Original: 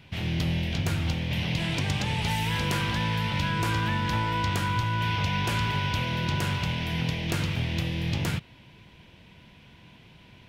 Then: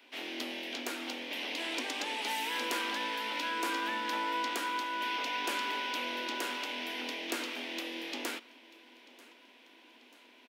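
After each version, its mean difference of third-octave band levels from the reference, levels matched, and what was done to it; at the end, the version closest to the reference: 10.5 dB: steep high-pass 240 Hz 96 dB/oct; high shelf 12000 Hz +4.5 dB; on a send: feedback echo 0.939 s, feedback 53%, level -22 dB; on the sum: gain -4 dB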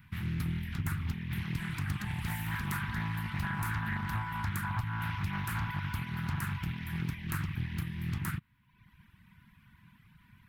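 6.0 dB: reverb removal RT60 0.94 s; EQ curve 210 Hz 0 dB, 550 Hz -30 dB, 1100 Hz +2 dB, 1800 Hz +2 dB, 2800 Hz -10 dB, 6000 Hz -11 dB, 13000 Hz +10 dB; Doppler distortion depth 0.46 ms; gain -3.5 dB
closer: second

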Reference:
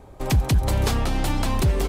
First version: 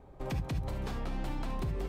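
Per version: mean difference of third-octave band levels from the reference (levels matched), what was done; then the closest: 3.5 dB: compressor, threshold -23 dBFS, peak gain reduction 8 dB; bell 11000 Hz -12 dB 2.2 oct; non-linear reverb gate 90 ms rising, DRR 7 dB; gain -9 dB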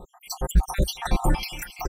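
12.0 dB: random spectral dropouts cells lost 73%; comb 5.6 ms, depth 70%; on a send: feedback echo 0.27 s, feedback 37%, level -19 dB; on the sum: gain +3 dB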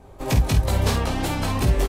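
2.5 dB: chorus 3 Hz, delay 17 ms, depth 3.1 ms; doubler 49 ms -7 dB; gain +2 dB; AAC 48 kbps 44100 Hz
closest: third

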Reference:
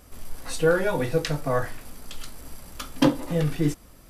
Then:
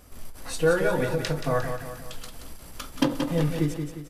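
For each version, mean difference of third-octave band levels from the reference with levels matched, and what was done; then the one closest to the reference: 3.5 dB: on a send: feedback echo 0.177 s, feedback 47%, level -7.5 dB; on the sum: ending taper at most 130 dB/s; gain -1 dB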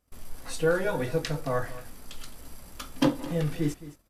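1.5 dB: gate -47 dBFS, range -20 dB; echo 0.215 s -16.5 dB; gain -4 dB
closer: second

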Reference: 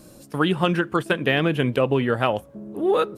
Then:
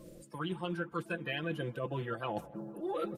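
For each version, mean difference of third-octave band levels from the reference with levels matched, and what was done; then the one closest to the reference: 4.5 dB: bin magnitudes rounded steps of 30 dB; comb 5.9 ms, depth 69%; reverse; compressor 5:1, threshold -29 dBFS, peak gain reduction 15 dB; reverse; narrowing echo 0.156 s, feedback 82%, band-pass 700 Hz, level -18 dB; gain -5.5 dB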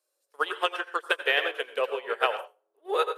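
12.0 dB: elliptic high-pass 420 Hz, stop band 60 dB; tilt shelf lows -3.5 dB, about 1200 Hz; plate-style reverb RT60 0.53 s, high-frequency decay 0.7×, pre-delay 75 ms, DRR 3.5 dB; upward expander 2.5:1, over -38 dBFS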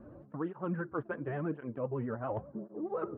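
8.0 dB: LPF 1400 Hz 24 dB/oct; reverse; compressor 12:1, threshold -29 dBFS, peak gain reduction 15 dB; reverse; vibrato 9.8 Hz 74 cents; tape flanging out of phase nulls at 0.93 Hz, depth 6.6 ms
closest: first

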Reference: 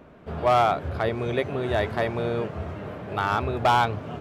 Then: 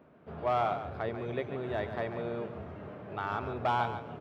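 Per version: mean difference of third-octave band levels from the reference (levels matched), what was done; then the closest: 2.5 dB: HPF 100 Hz; bell 9300 Hz -13.5 dB 1.8 oct; feedback echo 0.141 s, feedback 25%, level -10 dB; gain -9 dB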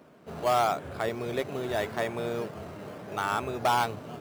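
4.0 dB: HPF 140 Hz 12 dB/oct; high shelf 3400 Hz +7.5 dB; in parallel at -5.5 dB: decimation with a swept rate 9×, swing 100% 0.82 Hz; on the sum: gain -8.5 dB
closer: first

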